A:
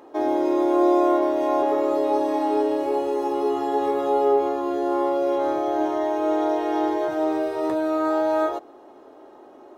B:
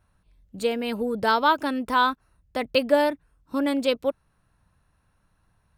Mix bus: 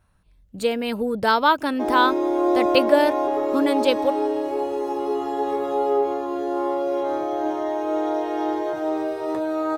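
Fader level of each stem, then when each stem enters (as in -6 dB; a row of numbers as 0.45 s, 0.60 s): -1.5 dB, +2.5 dB; 1.65 s, 0.00 s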